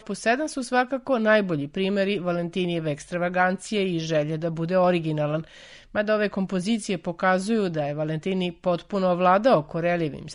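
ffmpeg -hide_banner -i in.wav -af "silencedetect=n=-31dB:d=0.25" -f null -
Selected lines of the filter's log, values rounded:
silence_start: 5.42
silence_end: 5.95 | silence_duration: 0.53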